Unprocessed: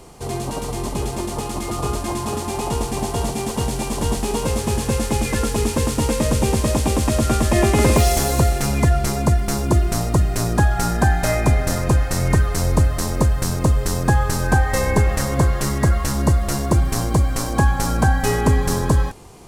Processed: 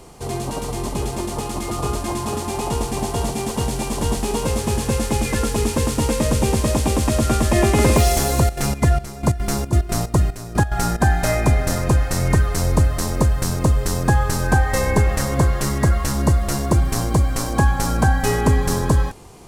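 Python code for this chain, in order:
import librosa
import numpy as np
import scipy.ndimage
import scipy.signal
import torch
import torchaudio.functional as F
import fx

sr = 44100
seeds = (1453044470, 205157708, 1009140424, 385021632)

y = fx.step_gate(x, sr, bpm=182, pattern='x.xxx.x.xx.xx...', floor_db=-12.0, edge_ms=4.5, at=(8.4, 11.0), fade=0.02)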